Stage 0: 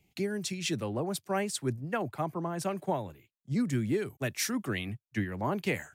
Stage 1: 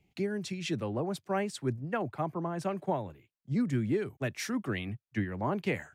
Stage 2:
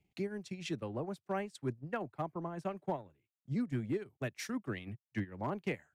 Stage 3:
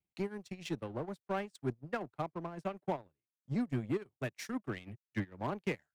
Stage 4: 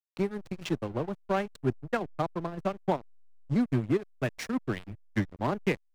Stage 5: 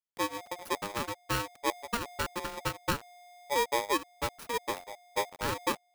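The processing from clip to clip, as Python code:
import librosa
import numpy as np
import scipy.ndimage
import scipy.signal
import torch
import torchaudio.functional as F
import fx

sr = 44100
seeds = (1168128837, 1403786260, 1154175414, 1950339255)

y1 = fx.lowpass(x, sr, hz=2700.0, slope=6)
y2 = fx.transient(y1, sr, attack_db=2, sustain_db=-12)
y2 = np.clip(y2, -10.0 ** (-21.0 / 20.0), 10.0 ** (-21.0 / 20.0))
y2 = y2 * 10.0 ** (-6.0 / 20.0)
y3 = fx.power_curve(y2, sr, exponent=1.4)
y3 = y3 * 10.0 ** (2.0 / 20.0)
y4 = fx.backlash(y3, sr, play_db=-42.0)
y4 = y4 * 10.0 ** (8.0 / 20.0)
y5 = fx.bit_reversed(y4, sr, seeds[0], block=16)
y5 = fx.high_shelf(y5, sr, hz=5800.0, db=-10.5)
y5 = y5 * np.sign(np.sin(2.0 * np.pi * 710.0 * np.arange(len(y5)) / sr))
y5 = y5 * 10.0 ** (-2.5 / 20.0)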